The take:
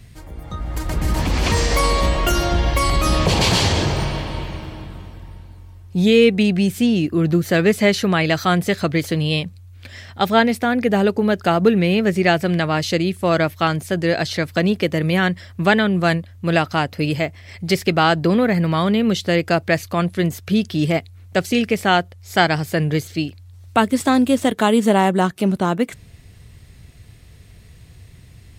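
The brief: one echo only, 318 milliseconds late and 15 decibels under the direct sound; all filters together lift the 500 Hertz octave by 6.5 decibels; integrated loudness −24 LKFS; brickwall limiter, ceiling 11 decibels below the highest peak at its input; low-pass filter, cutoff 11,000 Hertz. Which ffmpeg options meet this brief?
ffmpeg -i in.wav -af "lowpass=11000,equalizer=frequency=500:width_type=o:gain=8,alimiter=limit=-9dB:level=0:latency=1,aecho=1:1:318:0.178,volume=-5dB" out.wav

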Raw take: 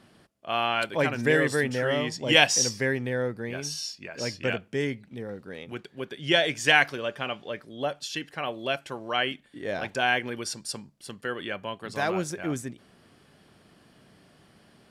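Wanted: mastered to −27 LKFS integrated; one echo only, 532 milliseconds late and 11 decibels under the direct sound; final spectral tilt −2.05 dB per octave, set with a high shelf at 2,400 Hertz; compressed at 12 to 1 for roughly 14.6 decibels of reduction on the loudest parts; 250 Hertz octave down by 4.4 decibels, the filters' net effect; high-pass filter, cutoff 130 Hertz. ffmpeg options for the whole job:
ffmpeg -i in.wav -af "highpass=130,equalizer=frequency=250:width_type=o:gain=-5.5,highshelf=frequency=2400:gain=6,acompressor=threshold=-26dB:ratio=12,aecho=1:1:532:0.282,volume=5dB" out.wav

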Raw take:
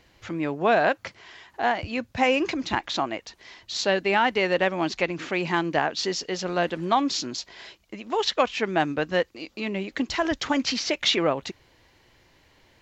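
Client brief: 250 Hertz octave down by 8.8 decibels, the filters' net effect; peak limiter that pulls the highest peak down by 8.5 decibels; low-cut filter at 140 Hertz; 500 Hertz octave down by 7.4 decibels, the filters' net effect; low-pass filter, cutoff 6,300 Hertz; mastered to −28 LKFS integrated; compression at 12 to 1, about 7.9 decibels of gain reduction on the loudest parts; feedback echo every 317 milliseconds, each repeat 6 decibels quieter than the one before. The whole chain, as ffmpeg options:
ffmpeg -i in.wav -af "highpass=140,lowpass=6300,equalizer=frequency=250:width_type=o:gain=-8.5,equalizer=frequency=500:width_type=o:gain=-7.5,acompressor=threshold=-27dB:ratio=12,alimiter=limit=-22.5dB:level=0:latency=1,aecho=1:1:317|634|951|1268|1585|1902:0.501|0.251|0.125|0.0626|0.0313|0.0157,volume=6dB" out.wav

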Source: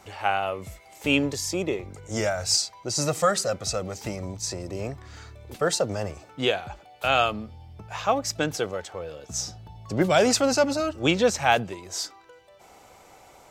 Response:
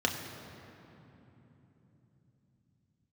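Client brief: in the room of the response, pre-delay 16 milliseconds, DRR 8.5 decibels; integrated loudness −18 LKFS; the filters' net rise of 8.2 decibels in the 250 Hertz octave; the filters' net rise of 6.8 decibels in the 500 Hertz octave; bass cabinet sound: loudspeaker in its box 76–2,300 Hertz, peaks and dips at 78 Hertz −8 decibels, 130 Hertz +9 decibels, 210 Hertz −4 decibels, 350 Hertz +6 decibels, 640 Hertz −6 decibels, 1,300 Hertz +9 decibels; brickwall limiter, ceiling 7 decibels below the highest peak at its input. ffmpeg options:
-filter_complex "[0:a]equalizer=frequency=250:width_type=o:gain=5.5,equalizer=frequency=500:width_type=o:gain=7.5,alimiter=limit=-9dB:level=0:latency=1,asplit=2[link_01][link_02];[1:a]atrim=start_sample=2205,adelay=16[link_03];[link_02][link_03]afir=irnorm=-1:irlink=0,volume=-17.5dB[link_04];[link_01][link_04]amix=inputs=2:normalize=0,highpass=frequency=76:width=0.5412,highpass=frequency=76:width=1.3066,equalizer=frequency=78:width_type=q:width=4:gain=-8,equalizer=frequency=130:width_type=q:width=4:gain=9,equalizer=frequency=210:width_type=q:width=4:gain=-4,equalizer=frequency=350:width_type=q:width=4:gain=6,equalizer=frequency=640:width_type=q:width=4:gain=-6,equalizer=frequency=1300:width_type=q:width=4:gain=9,lowpass=frequency=2300:width=0.5412,lowpass=frequency=2300:width=1.3066,volume=3.5dB"

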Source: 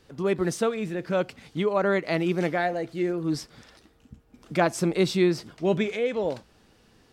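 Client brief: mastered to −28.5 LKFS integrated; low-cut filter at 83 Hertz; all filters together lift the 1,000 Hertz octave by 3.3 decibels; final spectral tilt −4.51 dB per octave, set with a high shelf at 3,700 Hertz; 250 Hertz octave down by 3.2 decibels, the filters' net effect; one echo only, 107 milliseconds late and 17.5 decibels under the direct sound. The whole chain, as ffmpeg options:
ffmpeg -i in.wav -af "highpass=83,equalizer=frequency=250:width_type=o:gain=-6,equalizer=frequency=1000:width_type=o:gain=5,highshelf=frequency=3700:gain=4.5,aecho=1:1:107:0.133,volume=-2dB" out.wav

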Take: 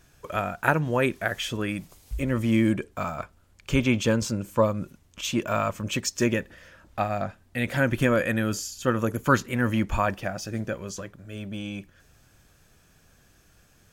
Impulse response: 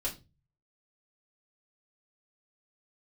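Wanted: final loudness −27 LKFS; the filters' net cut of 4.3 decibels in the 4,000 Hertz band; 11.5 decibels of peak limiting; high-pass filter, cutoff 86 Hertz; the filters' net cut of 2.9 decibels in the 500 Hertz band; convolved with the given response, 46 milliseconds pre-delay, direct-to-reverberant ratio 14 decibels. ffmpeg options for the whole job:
-filter_complex "[0:a]highpass=86,equalizer=frequency=500:width_type=o:gain=-3.5,equalizer=frequency=4000:width_type=o:gain=-6,alimiter=limit=-16.5dB:level=0:latency=1,asplit=2[link_01][link_02];[1:a]atrim=start_sample=2205,adelay=46[link_03];[link_02][link_03]afir=irnorm=-1:irlink=0,volume=-16.5dB[link_04];[link_01][link_04]amix=inputs=2:normalize=0,volume=3.5dB"

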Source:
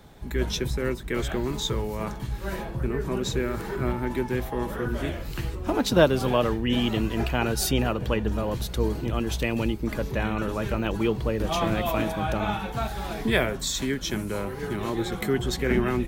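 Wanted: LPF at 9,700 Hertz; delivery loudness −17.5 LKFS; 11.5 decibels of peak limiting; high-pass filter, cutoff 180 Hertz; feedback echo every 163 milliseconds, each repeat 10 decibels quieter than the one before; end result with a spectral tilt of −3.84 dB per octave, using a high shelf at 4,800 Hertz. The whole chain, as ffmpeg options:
ffmpeg -i in.wav -af "highpass=180,lowpass=9700,highshelf=frequency=4800:gain=7,alimiter=limit=-17.5dB:level=0:latency=1,aecho=1:1:163|326|489|652:0.316|0.101|0.0324|0.0104,volume=11.5dB" out.wav

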